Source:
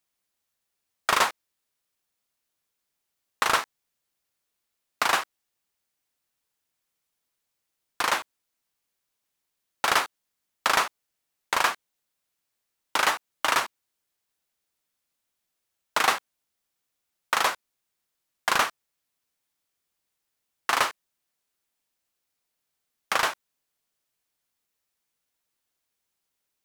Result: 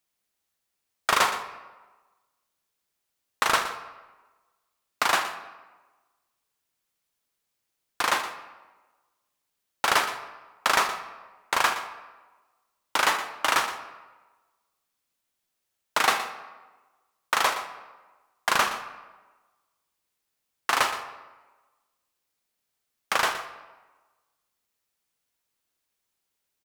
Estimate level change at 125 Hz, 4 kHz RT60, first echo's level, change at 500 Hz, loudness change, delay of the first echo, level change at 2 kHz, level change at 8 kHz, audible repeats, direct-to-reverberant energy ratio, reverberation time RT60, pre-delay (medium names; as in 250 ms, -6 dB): +1.0 dB, 0.80 s, -13.0 dB, +0.5 dB, 0.0 dB, 119 ms, +0.5 dB, +0.5 dB, 1, 8.0 dB, 1.2 s, 29 ms